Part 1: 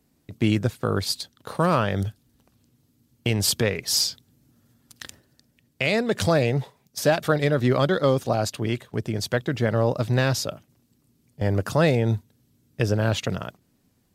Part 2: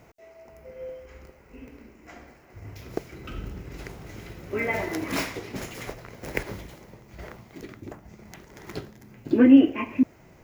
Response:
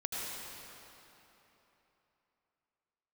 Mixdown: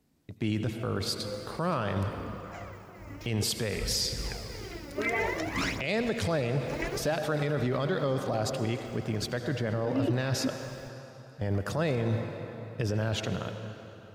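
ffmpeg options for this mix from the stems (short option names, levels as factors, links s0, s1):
-filter_complex "[0:a]highshelf=f=9500:g=-7,volume=0.501,asplit=3[s0][s1][s2];[s1]volume=0.335[s3];[1:a]acrossover=split=7600[s4][s5];[s5]acompressor=threshold=0.00141:ratio=4:attack=1:release=60[s6];[s4][s6]amix=inputs=2:normalize=0,aphaser=in_gain=1:out_gain=1:delay=3.6:decay=0.66:speed=0.56:type=triangular,adelay=450,volume=0.841[s7];[s2]apad=whole_len=480011[s8];[s7][s8]sidechaincompress=threshold=0.0141:ratio=8:attack=7.2:release=183[s9];[2:a]atrim=start_sample=2205[s10];[s3][s10]afir=irnorm=-1:irlink=0[s11];[s0][s9][s11]amix=inputs=3:normalize=0,alimiter=limit=0.1:level=0:latency=1:release=20"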